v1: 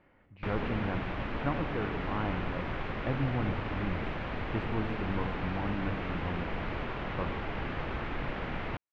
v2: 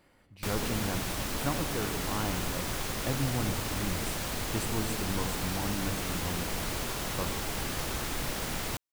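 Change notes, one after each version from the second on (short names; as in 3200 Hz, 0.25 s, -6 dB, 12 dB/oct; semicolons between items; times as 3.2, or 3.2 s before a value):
master: remove LPF 2600 Hz 24 dB/oct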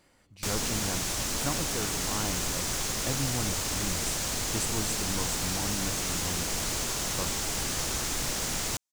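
speech: send -9.0 dB; master: add bell 6700 Hz +10.5 dB 1.2 oct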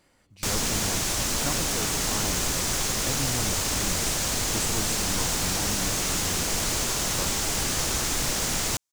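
background +4.5 dB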